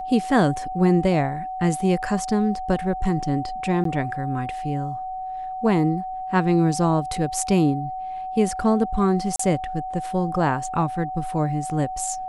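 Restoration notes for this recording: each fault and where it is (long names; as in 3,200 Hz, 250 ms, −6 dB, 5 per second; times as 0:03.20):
whistle 750 Hz −28 dBFS
0:03.84–0:03.85: drop-out 13 ms
0:09.36–0:09.39: drop-out 34 ms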